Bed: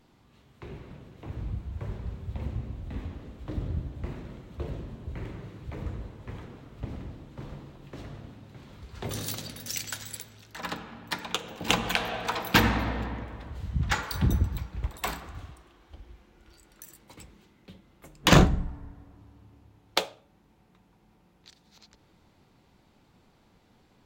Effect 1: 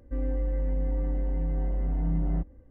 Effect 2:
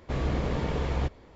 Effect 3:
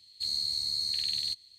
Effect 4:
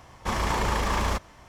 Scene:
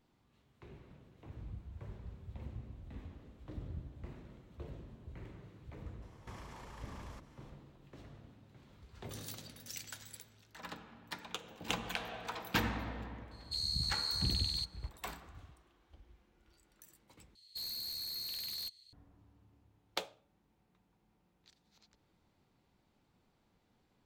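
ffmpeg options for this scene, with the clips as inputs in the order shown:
ffmpeg -i bed.wav -i cue0.wav -i cue1.wav -i cue2.wav -i cue3.wav -filter_complex "[3:a]asplit=2[link_01][link_02];[0:a]volume=-12dB[link_03];[4:a]acompressor=threshold=-34dB:ratio=6:attack=3.2:release=140:knee=1:detection=peak[link_04];[link_02]aeval=exprs='0.0299*(abs(mod(val(0)/0.0299+3,4)-2)-1)':channel_layout=same[link_05];[link_03]asplit=2[link_06][link_07];[link_06]atrim=end=17.354[link_08];[link_05]atrim=end=1.58,asetpts=PTS-STARTPTS,volume=-6dB[link_09];[link_07]atrim=start=18.926[link_10];[link_04]atrim=end=1.48,asetpts=PTS-STARTPTS,volume=-14.5dB,afade=type=in:duration=0.004:curve=hsin,afade=type=out:start_time=1.476:duration=0.004:curve=hsin,adelay=6020[link_11];[link_01]atrim=end=1.58,asetpts=PTS-STARTPTS,volume=-5.5dB,afade=type=in:duration=0.004:curve=hsin,afade=type=out:start_time=1.576:duration=0.004:curve=hsin,adelay=13310[link_12];[link_08][link_09]acrossfade=duration=0.004:curve1=hsin:curve2=hsin[link_13];[link_13][link_10]acrossfade=duration=0.004:curve1=hsin:curve2=hsin[link_14];[link_14][link_11][link_12]amix=inputs=3:normalize=0" out.wav

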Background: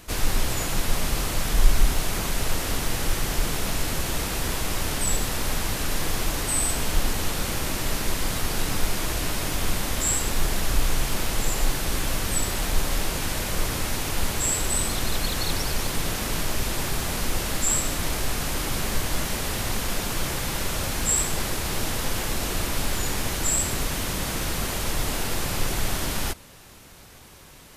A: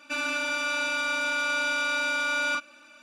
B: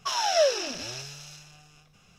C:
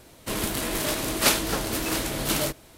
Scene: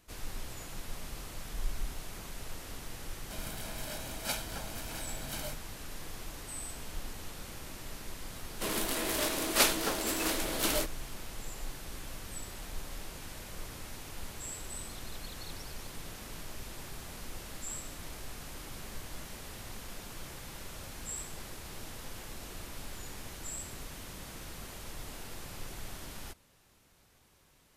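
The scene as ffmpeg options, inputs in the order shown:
ffmpeg -i bed.wav -i cue0.wav -i cue1.wav -i cue2.wav -filter_complex "[3:a]asplit=2[link_01][link_02];[0:a]volume=-17.5dB[link_03];[link_01]aecho=1:1:1.3:0.77[link_04];[link_02]highpass=240[link_05];[link_04]atrim=end=2.77,asetpts=PTS-STARTPTS,volume=-17dB,afade=type=in:duration=0.004:curve=hsin,afade=type=out:start_time=2.766:duration=0.004:curve=hsin,adelay=3030[link_06];[link_05]atrim=end=2.77,asetpts=PTS-STARTPTS,volume=-4.5dB,afade=type=in:duration=0.004:curve=hsin,afade=type=out:start_time=2.766:duration=0.004:curve=hsin,adelay=367794S[link_07];[link_03][link_06][link_07]amix=inputs=3:normalize=0" out.wav

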